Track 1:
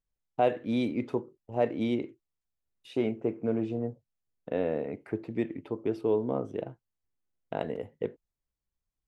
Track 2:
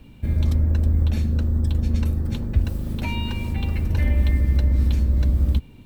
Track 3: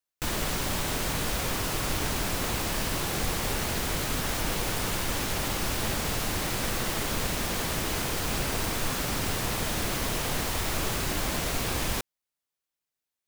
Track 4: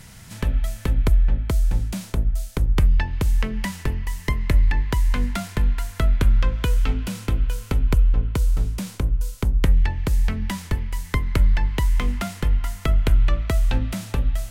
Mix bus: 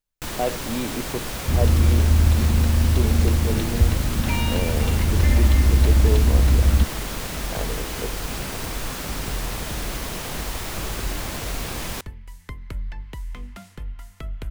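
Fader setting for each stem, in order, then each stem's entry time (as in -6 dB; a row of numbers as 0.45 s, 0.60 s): 0.0 dB, +2.5 dB, -1.0 dB, -13.5 dB; 0.00 s, 1.25 s, 0.00 s, 1.35 s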